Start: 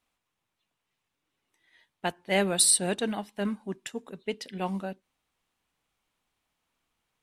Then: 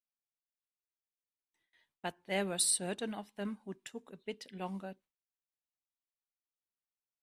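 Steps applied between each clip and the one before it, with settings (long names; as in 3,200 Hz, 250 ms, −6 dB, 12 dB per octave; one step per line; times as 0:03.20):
noise gate with hold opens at −55 dBFS
level −9 dB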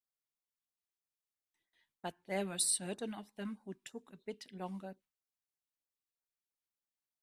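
auto-filter notch sine 3.1 Hz 430–3,200 Hz
level −2 dB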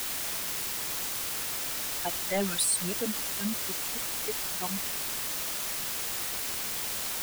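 spectral dynamics exaggerated over time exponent 3
in parallel at −8.5 dB: bit-depth reduction 6 bits, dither triangular
on the sum: leveller curve on the samples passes 3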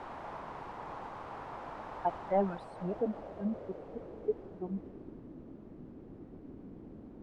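low-pass filter sweep 930 Hz → 290 Hz, 0:02.20–0:05.31
level −2.5 dB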